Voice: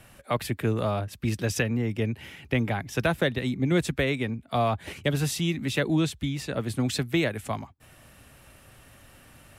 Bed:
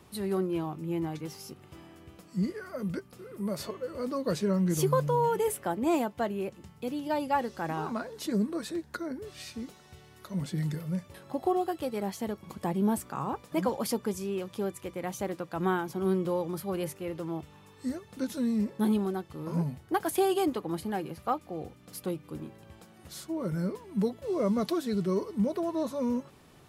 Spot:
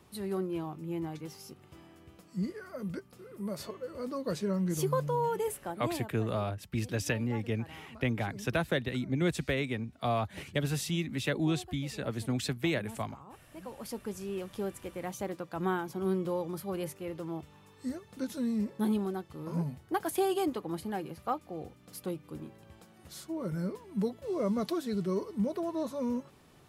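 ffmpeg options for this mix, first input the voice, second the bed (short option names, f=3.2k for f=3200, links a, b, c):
-filter_complex "[0:a]adelay=5500,volume=-5.5dB[a];[1:a]volume=11.5dB,afade=t=out:st=5.39:d=0.82:silence=0.188365,afade=t=in:st=13.6:d=0.84:silence=0.16788[b];[a][b]amix=inputs=2:normalize=0"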